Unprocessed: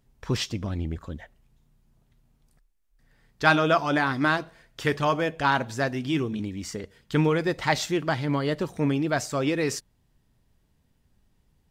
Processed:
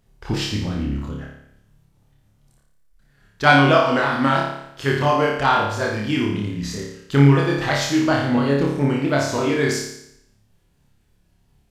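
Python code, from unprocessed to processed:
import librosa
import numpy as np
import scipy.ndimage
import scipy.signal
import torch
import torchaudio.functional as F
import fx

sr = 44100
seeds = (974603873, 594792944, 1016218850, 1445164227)

y = fx.pitch_ramps(x, sr, semitones=-3.0, every_ms=335)
y = fx.room_flutter(y, sr, wall_m=4.9, rt60_s=0.76)
y = y * librosa.db_to_amplitude(3.5)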